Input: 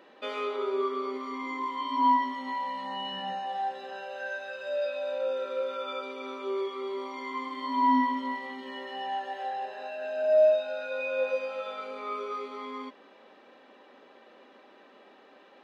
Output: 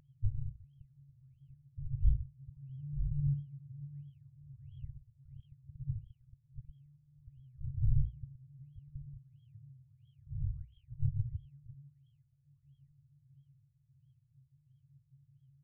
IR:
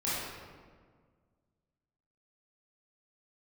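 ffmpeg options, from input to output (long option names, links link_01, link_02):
-filter_complex "[0:a]aecho=1:1:683|1366|2049|2732:0.168|0.0672|0.0269|0.0107,asplit=2[link_01][link_02];[link_02]asetrate=33038,aresample=44100,atempo=1.33484,volume=-2dB[link_03];[link_01][link_03]amix=inputs=2:normalize=0,aexciter=amount=8.3:drive=9.8:freq=2300,aeval=exprs='0.237*(abs(mod(val(0)/0.237+3,4)-2)-1)':channel_layout=same,highshelf=frequency=2900:gain=3.5,bandreject=frequency=60:width_type=h:width=6,bandreject=frequency=120:width_type=h:width=6,apsyclip=13dB,afftfilt=real='re*(1-between(b*sr/4096,140,3700))':imag='im*(1-between(b*sr/4096,140,3700))':win_size=4096:overlap=0.75,afftfilt=real='re*lt(b*sr/1024,480*pow(3300/480,0.5+0.5*sin(2*PI*1.5*pts/sr)))':imag='im*lt(b*sr/1024,480*pow(3300/480,0.5+0.5*sin(2*PI*1.5*pts/sr)))':win_size=1024:overlap=0.75,volume=9dB"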